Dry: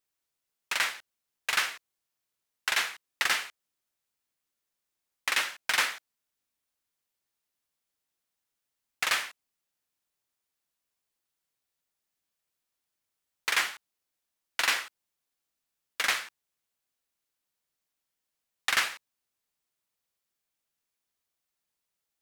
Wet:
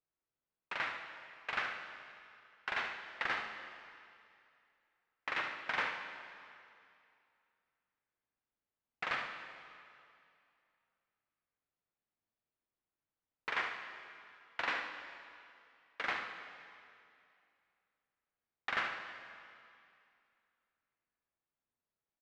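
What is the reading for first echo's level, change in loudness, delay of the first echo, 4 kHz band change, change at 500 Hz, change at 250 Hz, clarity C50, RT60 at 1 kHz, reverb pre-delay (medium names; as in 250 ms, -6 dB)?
-9.0 dB, -10.5 dB, 74 ms, -14.5 dB, -2.5 dB, -1.0 dB, 4.5 dB, 2.5 s, 6 ms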